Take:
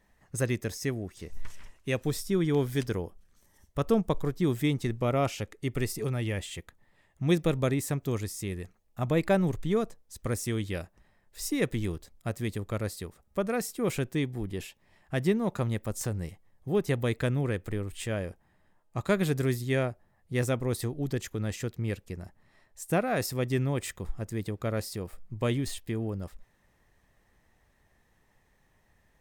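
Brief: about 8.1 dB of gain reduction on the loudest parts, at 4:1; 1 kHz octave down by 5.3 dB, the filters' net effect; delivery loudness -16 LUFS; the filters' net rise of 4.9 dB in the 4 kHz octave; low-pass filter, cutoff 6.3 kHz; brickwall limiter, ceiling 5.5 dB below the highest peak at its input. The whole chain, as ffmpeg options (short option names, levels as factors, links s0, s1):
-af "lowpass=6300,equalizer=f=1000:t=o:g=-8.5,equalizer=f=4000:t=o:g=7.5,acompressor=threshold=0.0316:ratio=4,volume=11.9,alimiter=limit=0.708:level=0:latency=1"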